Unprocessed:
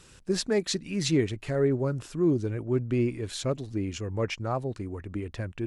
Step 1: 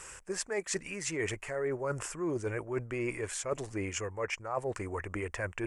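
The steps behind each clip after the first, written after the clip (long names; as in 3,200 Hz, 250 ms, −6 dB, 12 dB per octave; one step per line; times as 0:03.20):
octave-band graphic EQ 125/250/500/1,000/2,000/8,000 Hz −6/−9/+5/+8/+9/+12 dB
reversed playback
downward compressor 12 to 1, threshold −31 dBFS, peak gain reduction 14.5 dB
reversed playback
parametric band 3,900 Hz −13 dB 0.46 octaves
level +1 dB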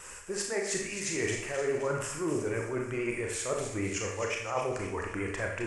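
pitch vibrato 10 Hz 58 cents
delay with a high-pass on its return 261 ms, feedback 51%, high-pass 1,800 Hz, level −8.5 dB
four-comb reverb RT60 0.65 s, combs from 27 ms, DRR 0.5 dB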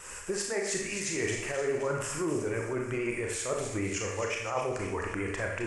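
camcorder AGC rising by 23 dB per second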